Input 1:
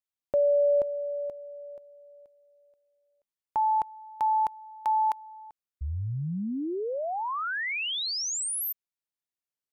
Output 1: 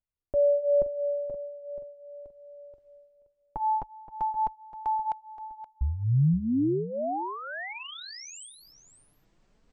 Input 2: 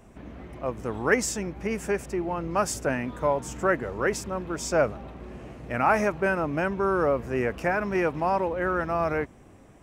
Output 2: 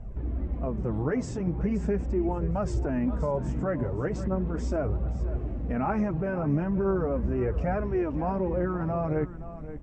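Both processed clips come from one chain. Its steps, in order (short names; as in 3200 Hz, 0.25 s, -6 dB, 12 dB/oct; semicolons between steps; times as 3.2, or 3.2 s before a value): Chebyshev low-pass 8100 Hz, order 5; tilt -4.5 dB/oct; reverse; upward compressor, threshold -37 dBFS; reverse; limiter -16.5 dBFS; flange 0.39 Hz, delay 1.3 ms, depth 6.3 ms, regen -15%; on a send: echo 0.524 s -13.5 dB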